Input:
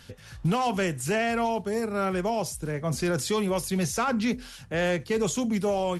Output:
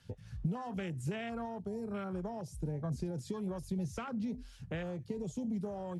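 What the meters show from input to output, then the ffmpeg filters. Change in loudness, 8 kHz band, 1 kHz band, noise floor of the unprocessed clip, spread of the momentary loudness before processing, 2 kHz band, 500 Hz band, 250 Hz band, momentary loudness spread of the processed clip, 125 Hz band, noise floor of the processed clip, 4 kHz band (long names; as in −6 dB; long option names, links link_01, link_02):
−12.0 dB, −21.0 dB, −16.0 dB, −47 dBFS, 5 LU, −17.5 dB, −14.5 dB, −9.5 dB, 3 LU, −7.0 dB, −54 dBFS, −18.5 dB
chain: -filter_complex "[0:a]acompressor=threshold=-30dB:ratio=16,afwtdn=0.0141,acrossover=split=210|3000[link_01][link_02][link_03];[link_02]acompressor=threshold=-48dB:ratio=2[link_04];[link_01][link_04][link_03]amix=inputs=3:normalize=0,lowpass=11000,volume=1dB"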